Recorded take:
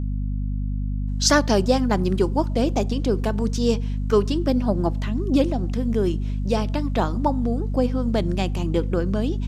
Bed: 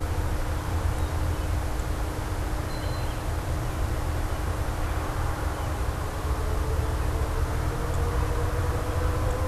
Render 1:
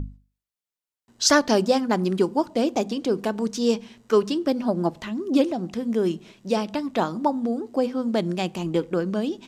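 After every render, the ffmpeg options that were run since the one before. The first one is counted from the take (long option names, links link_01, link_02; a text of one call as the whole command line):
ffmpeg -i in.wav -af "bandreject=frequency=50:width_type=h:width=6,bandreject=frequency=100:width_type=h:width=6,bandreject=frequency=150:width_type=h:width=6,bandreject=frequency=200:width_type=h:width=6,bandreject=frequency=250:width_type=h:width=6" out.wav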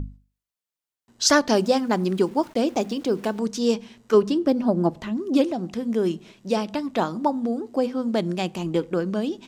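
ffmpeg -i in.wav -filter_complex "[0:a]asettb=1/sr,asplit=3[link_01][link_02][link_03];[link_01]atrim=end=1.564[link_04];[link_02]atrim=start=1.56:end=3.4,asetpts=PTS-STARTPTS,afade=type=in:duration=0.004:curve=qsin,afade=type=out:start_time=1.836:duration=0.004:curve=qsin,aeval=exprs='val(0)*gte(abs(val(0)),0.00596)':channel_layout=same[link_05];[link_03]atrim=start=3.396[link_06];[link_04][link_05]acrossfade=duration=0.004:curve1=hsin:curve2=qsin[link_07];[link_07][link_06]acrossfade=duration=0.004:curve1=qsin:curve2=hsin,asettb=1/sr,asplit=3[link_08][link_09][link_10];[link_08]atrim=end=4.144[link_11];[link_09]atrim=start=4.14:end=5.17,asetpts=PTS-STARTPTS,afade=type=in:duration=0.004:curve=qsin,afade=type=out:start_time=1.026:duration=0.004:curve=qsin,tiltshelf=frequency=970:gain=3.5[link_12];[link_10]atrim=start=5.166[link_13];[link_11][link_12]acrossfade=duration=0.004:curve1=hsin:curve2=qsin[link_14];[link_14][link_13]acrossfade=duration=0.004:curve1=qsin:curve2=hsin" out.wav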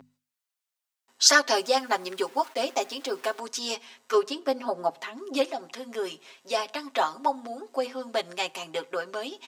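ffmpeg -i in.wav -af "highpass=750,aecho=1:1:7.4:0.87" out.wav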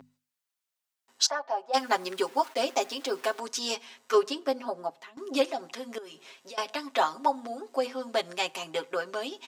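ffmpeg -i in.wav -filter_complex "[0:a]asplit=3[link_01][link_02][link_03];[link_01]afade=type=out:start_time=1.25:duration=0.02[link_04];[link_02]bandpass=frequency=780:width_type=q:width=4.3,afade=type=in:start_time=1.25:duration=0.02,afade=type=out:start_time=1.73:duration=0.02[link_05];[link_03]afade=type=in:start_time=1.73:duration=0.02[link_06];[link_04][link_05][link_06]amix=inputs=3:normalize=0,asettb=1/sr,asplit=3[link_07][link_08][link_09];[link_07]atrim=end=5.984[link_10];[link_08]atrim=start=5.98:end=6.58,asetpts=PTS-STARTPTS,afade=type=in:duration=0.004:curve=qsin,afade=type=out:start_time=0.596:duration=0.004:curve=qsin,acompressor=threshold=-42dB:ratio=6:attack=3.2:release=140:knee=1:detection=peak[link_11];[link_09]atrim=start=6.576[link_12];[link_10][link_11]acrossfade=duration=0.004:curve1=hsin:curve2=qsin[link_13];[link_13][link_12]acrossfade=duration=0.004:curve1=qsin:curve2=hsin,asplit=2[link_14][link_15];[link_14]atrim=end=5.17,asetpts=PTS-STARTPTS,afade=type=out:start_time=4.3:duration=0.87:silence=0.177828[link_16];[link_15]atrim=start=5.17,asetpts=PTS-STARTPTS,afade=type=in:duration=0.004:curve=hsin:silence=0.177828[link_17];[link_16][link_17]concat=n=2:v=0:a=1" out.wav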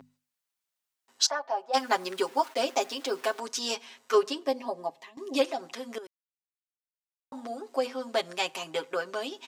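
ffmpeg -i in.wav -filter_complex "[0:a]asettb=1/sr,asplit=3[link_01][link_02][link_03];[link_01]atrim=end=4.434[link_04];[link_02]atrim=start=4.43:end=5.39,asetpts=PTS-STARTPTS,afade=type=in:duration=0.004:curve=qsin,afade=type=out:start_time=0.956:duration=0.004:curve=qsin,asuperstop=centerf=1400:order=4:qfactor=3.4[link_05];[link_03]atrim=start=5.386[link_06];[link_04][link_05]acrossfade=duration=0.004:curve1=hsin:curve2=qsin[link_07];[link_07][link_06]acrossfade=duration=0.004:curve1=qsin:curve2=hsin,asplit=3[link_08][link_09][link_10];[link_08]atrim=end=6.07,asetpts=PTS-STARTPTS,afade=type=out:start_time=6.066:duration=0.004:curve=hsin[link_11];[link_09]atrim=start=6.07:end=7.32,asetpts=PTS-STARTPTS,volume=0[link_12];[link_10]atrim=start=7.32,asetpts=PTS-STARTPTS,afade=type=in:duration=0.004:curve=hsin[link_13];[link_11][link_12][link_13]concat=n=3:v=0:a=1" out.wav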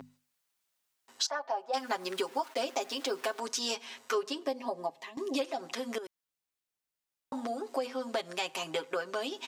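ffmpeg -i in.wav -filter_complex "[0:a]asplit=2[link_01][link_02];[link_02]alimiter=limit=-18.5dB:level=0:latency=1:release=107,volume=-0.5dB[link_03];[link_01][link_03]amix=inputs=2:normalize=0,acompressor=threshold=-34dB:ratio=2.5" out.wav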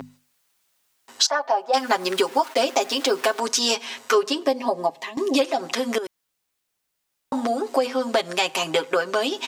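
ffmpeg -i in.wav -af "volume=12dB" out.wav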